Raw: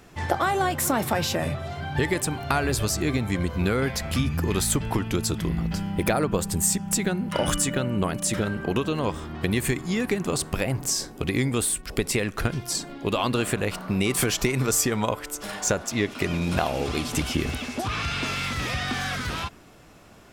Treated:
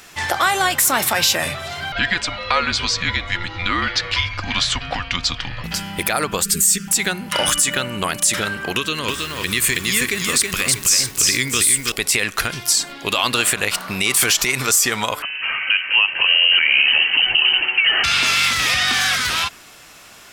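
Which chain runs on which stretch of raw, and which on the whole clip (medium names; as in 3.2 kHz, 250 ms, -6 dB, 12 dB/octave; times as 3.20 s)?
1.92–5.64 s: low-pass 4.8 kHz 24 dB/octave + comb 4.3 ms, depth 33% + frequency shift -180 Hz
6.44–6.88 s: Chebyshev band-stop 480–1300 Hz, order 3 + short-mantissa float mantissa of 6-bit + comb 4.9 ms, depth 100%
8.76–11.92 s: peaking EQ 750 Hz -12.5 dB 0.64 oct + bit-crushed delay 322 ms, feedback 35%, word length 8-bit, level -3.5 dB
15.22–18.04 s: delay 200 ms -17.5 dB + frequency inversion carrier 3 kHz
whole clip: tilt shelf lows -10 dB, about 890 Hz; peak limiter -11.5 dBFS; trim +6 dB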